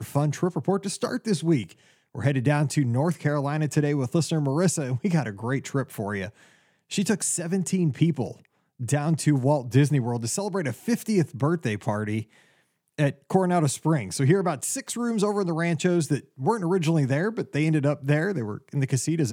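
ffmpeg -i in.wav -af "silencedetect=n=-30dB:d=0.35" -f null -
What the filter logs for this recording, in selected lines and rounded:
silence_start: 1.64
silence_end: 2.15 | silence_duration: 0.52
silence_start: 6.28
silence_end: 6.92 | silence_duration: 0.64
silence_start: 8.31
silence_end: 8.81 | silence_duration: 0.49
silence_start: 12.22
silence_end: 12.99 | silence_duration: 0.77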